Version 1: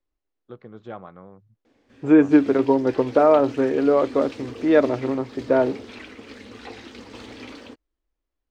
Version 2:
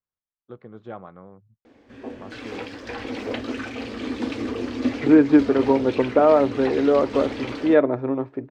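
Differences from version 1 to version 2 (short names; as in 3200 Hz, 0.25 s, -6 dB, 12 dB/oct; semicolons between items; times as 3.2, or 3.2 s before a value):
second voice: entry +3.00 s; background +9.0 dB; master: add high shelf 4000 Hz -9 dB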